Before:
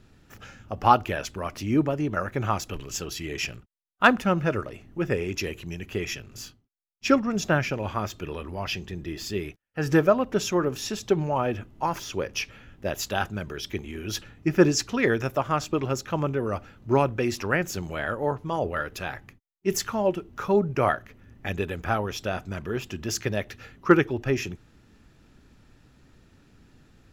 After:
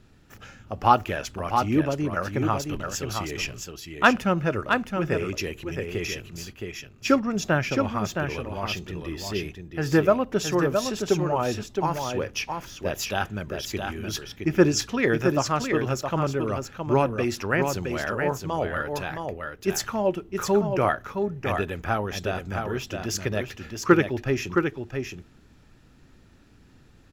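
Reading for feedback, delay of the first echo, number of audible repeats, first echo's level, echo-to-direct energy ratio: no regular repeats, 667 ms, 1, -5.5 dB, -5.5 dB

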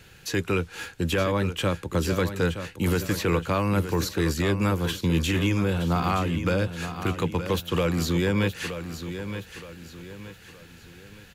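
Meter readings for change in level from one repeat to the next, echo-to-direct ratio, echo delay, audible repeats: -8.0 dB, -9.5 dB, 921 ms, 3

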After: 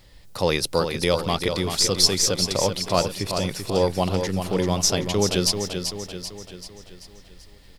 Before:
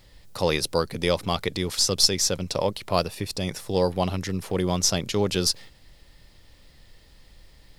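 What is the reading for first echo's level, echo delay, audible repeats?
-7.0 dB, 387 ms, 5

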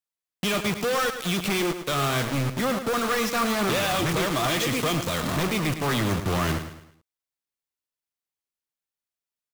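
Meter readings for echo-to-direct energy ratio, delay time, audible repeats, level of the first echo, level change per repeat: -9.5 dB, 107 ms, 4, -10.0 dB, -8.0 dB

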